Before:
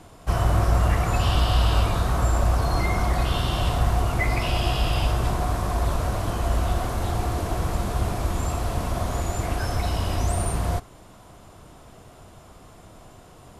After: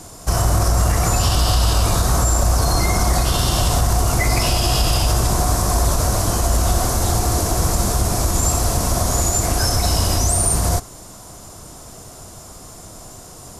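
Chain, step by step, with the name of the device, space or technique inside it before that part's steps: over-bright horn tweeter (resonant high shelf 4.2 kHz +10.5 dB, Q 1.5; peak limiter -14.5 dBFS, peak gain reduction 6 dB); trim +7 dB

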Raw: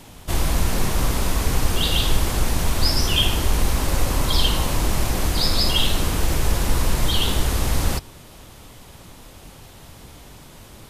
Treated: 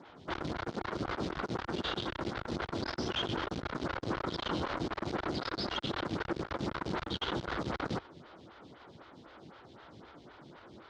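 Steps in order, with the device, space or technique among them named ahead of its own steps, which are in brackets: vibe pedal into a guitar amplifier (lamp-driven phase shifter 3.9 Hz; valve stage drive 28 dB, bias 0.8; cabinet simulation 110–4300 Hz, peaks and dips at 340 Hz +5 dB, 1.4 kHz +7 dB, 2.6 kHz -5 dB)

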